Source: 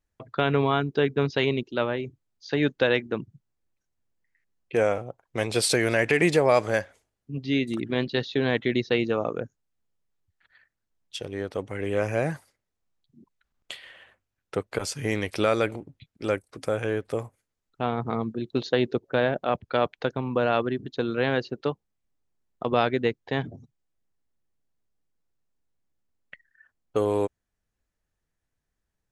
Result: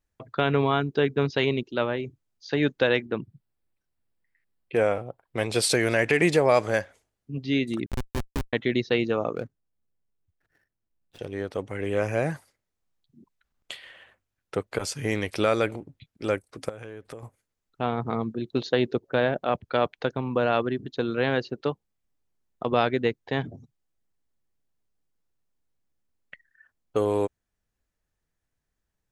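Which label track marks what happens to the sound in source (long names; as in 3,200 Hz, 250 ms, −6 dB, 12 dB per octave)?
3.050000	5.460000	parametric band 6,400 Hz −13 dB 0.3 octaves
7.860000	8.530000	comparator with hysteresis flips at −20.5 dBFS
9.350000	11.190000	running median over 41 samples
16.690000	17.230000	downward compressor 8 to 1, threshold −36 dBFS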